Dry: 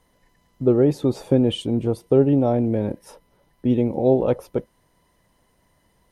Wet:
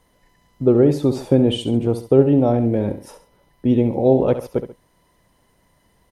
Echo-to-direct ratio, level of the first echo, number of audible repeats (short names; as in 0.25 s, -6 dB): -10.5 dB, -11.0 dB, 2